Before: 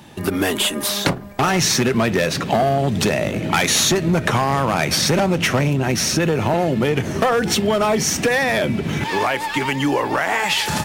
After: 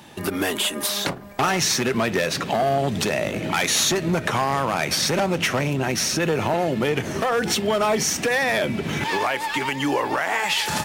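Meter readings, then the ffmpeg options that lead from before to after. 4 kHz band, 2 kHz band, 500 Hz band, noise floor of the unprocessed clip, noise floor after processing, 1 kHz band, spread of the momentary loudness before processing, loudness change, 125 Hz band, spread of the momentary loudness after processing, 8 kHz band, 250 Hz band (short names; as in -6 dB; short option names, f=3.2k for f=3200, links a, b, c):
-3.0 dB, -2.5 dB, -3.5 dB, -27 dBFS, -31 dBFS, -3.0 dB, 5 LU, -3.5 dB, -7.0 dB, 4 LU, -3.0 dB, -5.5 dB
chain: -af "lowshelf=f=260:g=-7,alimiter=limit=-12.5dB:level=0:latency=1:release=269"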